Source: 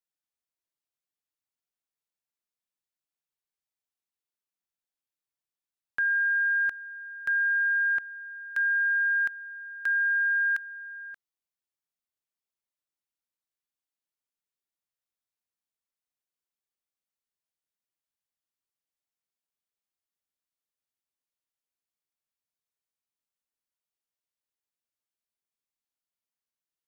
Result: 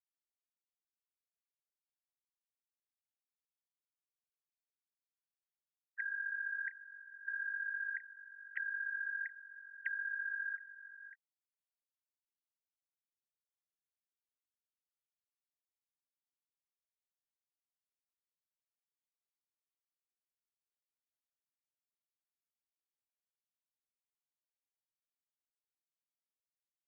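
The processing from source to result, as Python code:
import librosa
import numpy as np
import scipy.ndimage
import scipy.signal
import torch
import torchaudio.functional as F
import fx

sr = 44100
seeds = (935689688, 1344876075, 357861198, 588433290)

y = fx.sine_speech(x, sr)
y = fx.bandpass_q(y, sr, hz=1900.0, q=16.0)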